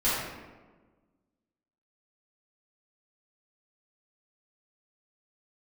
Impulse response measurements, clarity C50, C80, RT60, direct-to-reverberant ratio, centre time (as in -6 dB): -1.5 dB, 1.5 dB, 1.4 s, -12.5 dB, 87 ms